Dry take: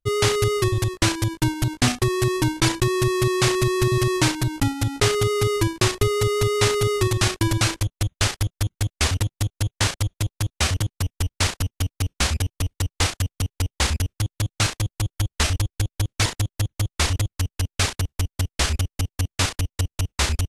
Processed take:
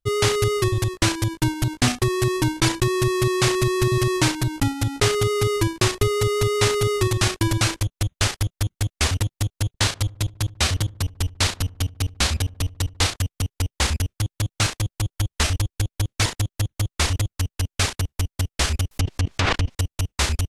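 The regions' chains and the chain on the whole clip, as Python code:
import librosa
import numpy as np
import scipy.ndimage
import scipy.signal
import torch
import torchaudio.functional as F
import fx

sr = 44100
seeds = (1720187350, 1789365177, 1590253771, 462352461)

y = fx.chain(x, sr, fx.peak_eq(hz=4000.0, db=3.5, octaves=0.55),
    fx.echo_filtered(ms=73, feedback_pct=59, hz=1200.0, wet_db=-21.0), at=(9.67, 13.16))
y = fx.chain(y, sr, fx.env_lowpass_down(base_hz=2400.0, full_db=-17.5),
    fx.env_flatten(amount_pct=100), at=(18.91, 19.75))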